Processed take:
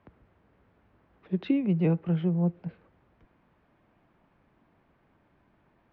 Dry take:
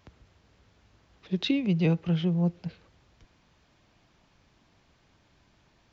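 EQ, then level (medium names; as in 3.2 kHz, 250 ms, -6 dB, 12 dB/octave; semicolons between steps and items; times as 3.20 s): distance through air 93 m; three-band isolator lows -13 dB, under 170 Hz, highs -21 dB, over 2.3 kHz; bass shelf 160 Hz +8 dB; 0.0 dB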